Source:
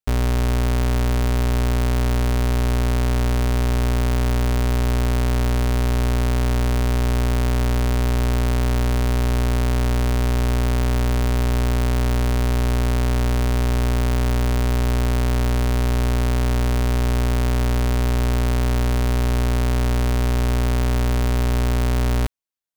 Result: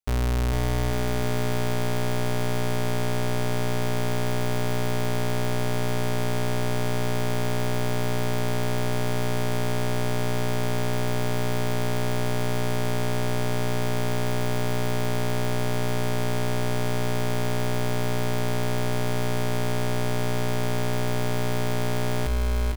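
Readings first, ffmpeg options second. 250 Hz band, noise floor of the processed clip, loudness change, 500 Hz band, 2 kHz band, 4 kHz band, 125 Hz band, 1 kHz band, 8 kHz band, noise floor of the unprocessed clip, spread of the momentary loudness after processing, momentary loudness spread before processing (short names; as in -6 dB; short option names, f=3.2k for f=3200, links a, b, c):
-5.0 dB, -24 dBFS, -6.5 dB, -0.5 dB, -2.0 dB, -2.0 dB, -7.0 dB, -2.0 dB, -2.0 dB, -18 dBFS, 1 LU, 0 LU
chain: -filter_complex "[0:a]bandreject=f=50:t=h:w=6,bandreject=f=100:t=h:w=6,bandreject=f=150:t=h:w=6,bandreject=f=200:t=h:w=6,bandreject=f=250:t=h:w=6,bandreject=f=300:t=h:w=6,asplit=2[a][b];[b]aecho=0:1:450|832.5|1158|1434|1669:0.631|0.398|0.251|0.158|0.1[c];[a][c]amix=inputs=2:normalize=0,volume=-4dB"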